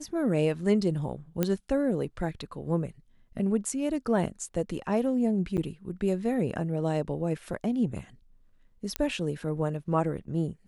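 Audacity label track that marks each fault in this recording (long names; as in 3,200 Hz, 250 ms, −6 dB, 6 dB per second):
1.430000	1.430000	click −12 dBFS
5.570000	5.580000	drop-out 9.1 ms
8.960000	8.960000	click −12 dBFS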